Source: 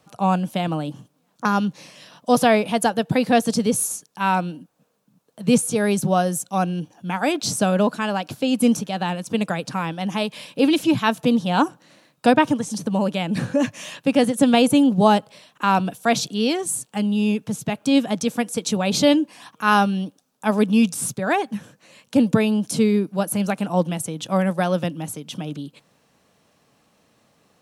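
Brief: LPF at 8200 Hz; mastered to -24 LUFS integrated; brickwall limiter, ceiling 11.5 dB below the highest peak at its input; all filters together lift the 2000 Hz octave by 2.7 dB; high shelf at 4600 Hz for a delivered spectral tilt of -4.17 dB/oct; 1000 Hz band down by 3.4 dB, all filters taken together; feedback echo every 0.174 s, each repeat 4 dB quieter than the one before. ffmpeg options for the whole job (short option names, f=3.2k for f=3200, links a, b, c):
-af "lowpass=8.2k,equalizer=f=1k:t=o:g=-6,equalizer=f=2k:t=o:g=4.5,highshelf=f=4.6k:g=6.5,alimiter=limit=-13.5dB:level=0:latency=1,aecho=1:1:174|348|522|696|870|1044|1218|1392|1566:0.631|0.398|0.25|0.158|0.0994|0.0626|0.0394|0.0249|0.0157,volume=-1dB"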